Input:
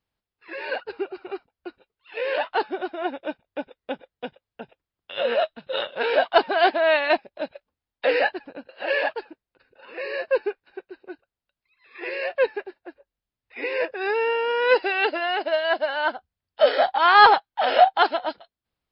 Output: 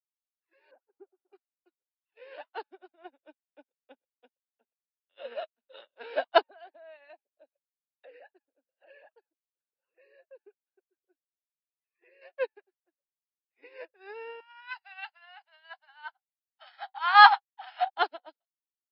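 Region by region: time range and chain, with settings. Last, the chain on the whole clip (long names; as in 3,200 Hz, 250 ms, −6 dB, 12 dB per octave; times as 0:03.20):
0:00.71–0:01.33: Bessel low-pass filter 870 Hz, order 4 + notch filter 460 Hz, Q 7.7
0:06.41–0:12.22: spectral envelope exaggerated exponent 1.5 + downward compressor 3 to 1, threshold −26 dBFS
0:14.40–0:17.90: Chebyshev band-stop filter 160–770 Hz, order 4 + double-tracking delay 21 ms −13 dB
whole clip: Butterworth high-pass 230 Hz 72 dB per octave; expander for the loud parts 2.5 to 1, over −40 dBFS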